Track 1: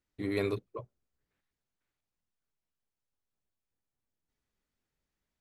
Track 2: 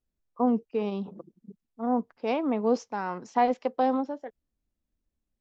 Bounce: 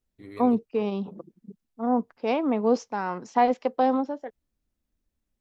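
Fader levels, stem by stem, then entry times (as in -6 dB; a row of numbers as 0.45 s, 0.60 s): -10.5 dB, +2.5 dB; 0.00 s, 0.00 s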